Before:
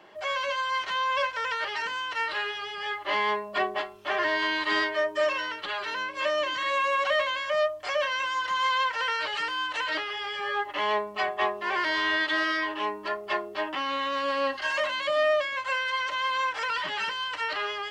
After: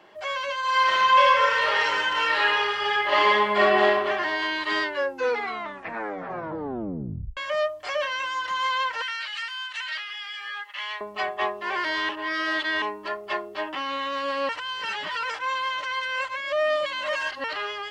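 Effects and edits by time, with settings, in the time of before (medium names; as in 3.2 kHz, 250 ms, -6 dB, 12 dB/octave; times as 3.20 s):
0.60–3.93 s: reverb throw, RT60 1.5 s, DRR -8 dB
4.80 s: tape stop 2.57 s
9.02–11.01 s: Chebyshev high-pass 1.9 kHz
12.09–12.82 s: reverse
14.49–17.44 s: reverse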